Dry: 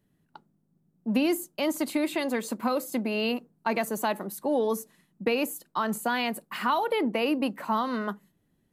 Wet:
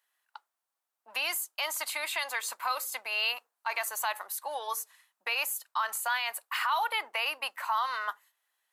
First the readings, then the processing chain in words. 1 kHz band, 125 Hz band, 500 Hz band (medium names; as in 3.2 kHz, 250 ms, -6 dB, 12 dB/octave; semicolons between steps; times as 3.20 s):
-1.5 dB, under -40 dB, -14.5 dB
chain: high-pass 910 Hz 24 dB/octave; peak limiter -24 dBFS, peak gain reduction 7.5 dB; trim +4 dB